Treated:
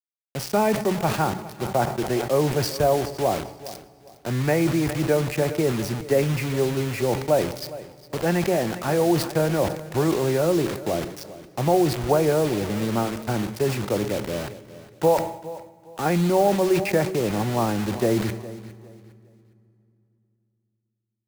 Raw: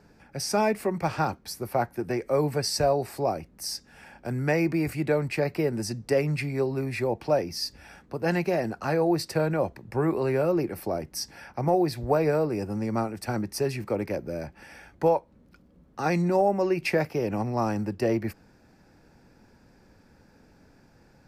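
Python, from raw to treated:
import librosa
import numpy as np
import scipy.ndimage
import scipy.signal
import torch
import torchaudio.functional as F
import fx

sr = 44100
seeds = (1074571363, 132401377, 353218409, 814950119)

p1 = fx.lowpass(x, sr, hz=1800.0, slope=6)
p2 = fx.quant_dither(p1, sr, seeds[0], bits=6, dither='none')
p3 = p2 + fx.echo_feedback(p2, sr, ms=409, feedback_pct=28, wet_db=-17.0, dry=0)
p4 = fx.rev_fdn(p3, sr, rt60_s=2.8, lf_ratio=1.35, hf_ratio=0.8, size_ms=48.0, drr_db=17.0)
p5 = fx.sustainer(p4, sr, db_per_s=88.0)
y = F.gain(torch.from_numpy(p5), 3.5).numpy()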